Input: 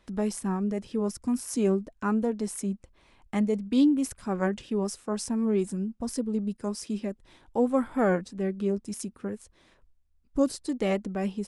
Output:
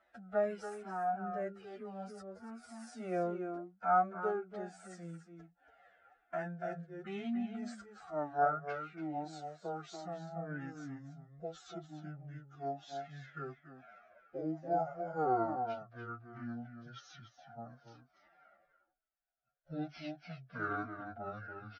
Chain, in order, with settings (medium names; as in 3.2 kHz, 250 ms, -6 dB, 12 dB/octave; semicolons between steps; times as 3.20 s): pitch bend over the whole clip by -11.5 st starting unshifted; two resonant band-passes 1 kHz, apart 0.95 oct; time stretch by phase-locked vocoder 1.9×; echo from a far wall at 49 m, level -7 dB; Shepard-style flanger falling 1.1 Hz; trim +12.5 dB